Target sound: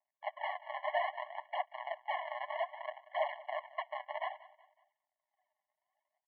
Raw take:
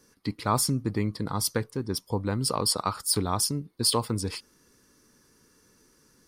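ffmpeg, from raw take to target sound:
-filter_complex "[0:a]agate=range=-20dB:threshold=-50dB:ratio=16:detection=peak,acompressor=threshold=-30dB:ratio=2,asetrate=68011,aresample=44100,atempo=0.64842,aresample=8000,acrusher=samples=37:mix=1:aa=0.000001:lfo=1:lforange=59.2:lforate=1.8,aresample=44100,asoftclip=type=hard:threshold=-30.5dB,aphaser=in_gain=1:out_gain=1:delay=4.3:decay=0.54:speed=0.62:type=triangular,asplit=2[a][b];[b]aecho=0:1:185|370|555:0.112|0.0438|0.0171[c];[a][c]amix=inputs=2:normalize=0,highpass=f=180:t=q:w=0.5412,highpass=f=180:t=q:w=1.307,lowpass=f=2.6k:t=q:w=0.5176,lowpass=f=2.6k:t=q:w=0.7071,lowpass=f=2.6k:t=q:w=1.932,afreqshift=69,afftfilt=real='re*eq(mod(floor(b*sr/1024/560),2),1)':imag='im*eq(mod(floor(b*sr/1024/560),2),1)':win_size=1024:overlap=0.75,volume=9dB"

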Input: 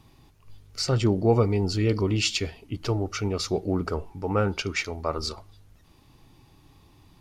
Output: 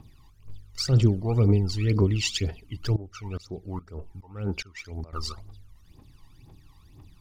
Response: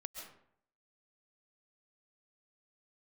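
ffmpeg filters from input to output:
-filter_complex "[0:a]aphaser=in_gain=1:out_gain=1:delay=1.1:decay=0.79:speed=2:type=triangular,asettb=1/sr,asplit=3[a][b][c];[a]atrim=end=2.964[d];[b]atrim=start=2.96:end=5.13,asetpts=PTS-STARTPTS,afade=t=in:d=0.004:c=qsin,afade=t=out:st=2.166:d=0.004:c=qsin,aeval=exprs='val(0)*pow(10,-20*if(lt(mod(-2.4*n/s,1),2*abs(-2.4)/1000),1-mod(-2.4*n/s,1)/(2*abs(-2.4)/1000),(mod(-2.4*n/s,1)-2*abs(-2.4)/1000)/(1-2*abs(-2.4)/1000))/20)':c=same[e];[c]atrim=start=5.126[f];[d][e]acrossfade=d=0.004:c1=hsin:c2=qsin[g];[g][f]acrossfade=d=0.004:c1=qsin:c2=hsin,volume=-6dB"

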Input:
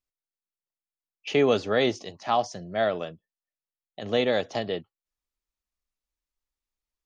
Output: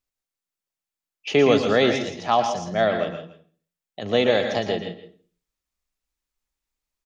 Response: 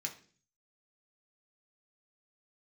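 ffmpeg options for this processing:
-filter_complex "[0:a]aecho=1:1:164:0.211,asplit=2[a][b];[1:a]atrim=start_sample=2205,adelay=115[c];[b][c]afir=irnorm=-1:irlink=0,volume=-5dB[d];[a][d]amix=inputs=2:normalize=0,volume=4dB"

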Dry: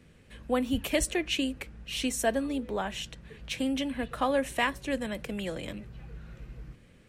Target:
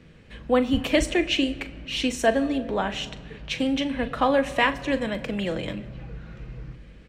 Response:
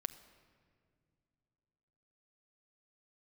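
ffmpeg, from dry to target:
-filter_complex "[0:a]asplit=2[a][b];[b]adelay=40,volume=-13.5dB[c];[a][c]amix=inputs=2:normalize=0,asplit=2[d][e];[1:a]atrim=start_sample=2205,lowpass=6.1k[f];[e][f]afir=irnorm=-1:irlink=0,volume=11dB[g];[d][g]amix=inputs=2:normalize=0,volume=-5.5dB"

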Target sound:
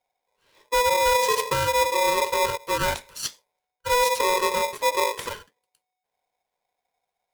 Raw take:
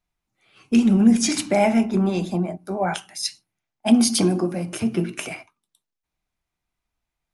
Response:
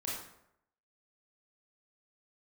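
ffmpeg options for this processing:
-af "equalizer=f=250:t=o:w=1:g=11,equalizer=f=500:t=o:w=1:g=-6,equalizer=f=2k:t=o:w=1:g=-8,equalizer=f=8k:t=o:w=1:g=-6,volume=6dB,asoftclip=hard,volume=-6dB,areverse,acompressor=threshold=-19dB:ratio=12,areverse,aeval=exprs='val(0)*sgn(sin(2*PI*740*n/s))':c=same"

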